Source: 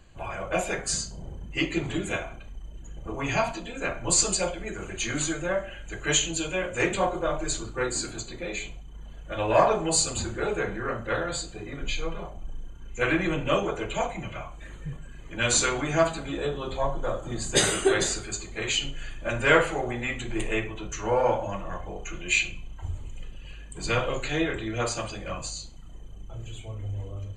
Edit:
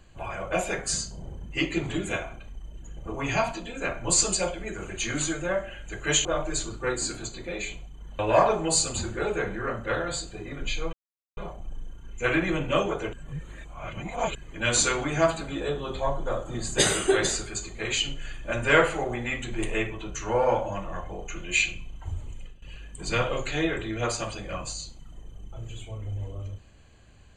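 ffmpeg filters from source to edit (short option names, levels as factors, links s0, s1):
-filter_complex "[0:a]asplit=7[s0][s1][s2][s3][s4][s5][s6];[s0]atrim=end=6.252[s7];[s1]atrim=start=7.188:end=9.132[s8];[s2]atrim=start=9.398:end=12.14,asetpts=PTS-STARTPTS,afade=t=out:st=2.738:d=0.004:c=hsin,apad=pad_dur=0.44[s9];[s3]atrim=start=12.14:end=13.902,asetpts=PTS-STARTPTS,afade=t=in:d=0.004:c=hsin[s10];[s4]atrim=start=13.898:end=15.122,asetpts=PTS-STARTPTS,areverse[s11];[s5]atrim=start=15.118:end=23.39,asetpts=PTS-STARTPTS,afade=t=out:st=8.002:d=0.27:silence=0.158489[s12];[s6]atrim=start=23.39,asetpts=PTS-STARTPTS,afade=t=in:d=0.004:c=hsin:silence=0.158489[s13];[s7][s8]acrossfade=d=0.004:c1=hsin:c2=hsin[s14];[s9][s10]concat=n=2:v=0:a=1[s15];[s14][s15]acrossfade=d=0.004:c1=hsin:c2=hsin[s16];[s16][s11]acrossfade=d=0.004:c1=hsin:c2=hsin[s17];[s12][s13]concat=n=2:v=0:a=1[s18];[s17][s18]acrossfade=d=0.004:c1=hsin:c2=hsin"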